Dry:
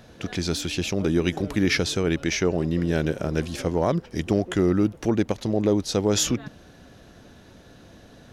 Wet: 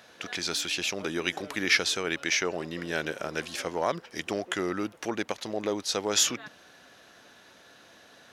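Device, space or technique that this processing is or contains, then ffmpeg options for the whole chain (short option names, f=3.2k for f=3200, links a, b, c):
filter by subtraction: -filter_complex "[0:a]asplit=2[a][b];[b]lowpass=1.5k,volume=-1[c];[a][c]amix=inputs=2:normalize=0"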